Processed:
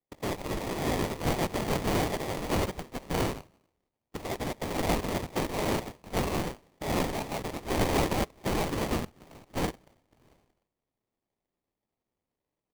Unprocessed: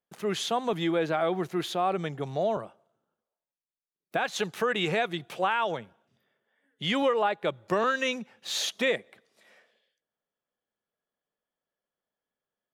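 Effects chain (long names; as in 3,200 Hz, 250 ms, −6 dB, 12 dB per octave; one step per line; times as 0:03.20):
in parallel at −1 dB: downward compressor, threshold −41 dBFS, peak gain reduction 18.5 dB
on the sum: three-band delay without the direct sound lows, highs, mids 90/740 ms, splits 390/1,200 Hz
voice inversion scrambler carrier 3,600 Hz
sample-rate reduction 1,500 Hz, jitter 20%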